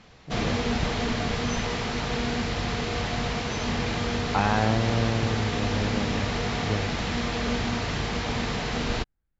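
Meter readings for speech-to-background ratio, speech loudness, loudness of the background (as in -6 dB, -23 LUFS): -1.0 dB, -29.0 LUFS, -28.0 LUFS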